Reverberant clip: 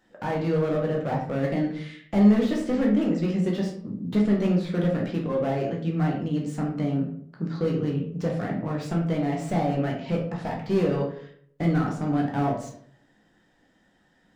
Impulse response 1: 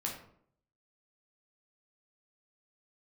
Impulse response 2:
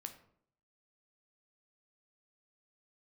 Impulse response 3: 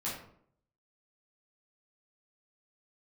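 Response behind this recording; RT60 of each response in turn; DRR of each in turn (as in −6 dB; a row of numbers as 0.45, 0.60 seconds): 1; 0.65, 0.65, 0.65 seconds; −1.5, 6.0, −8.5 decibels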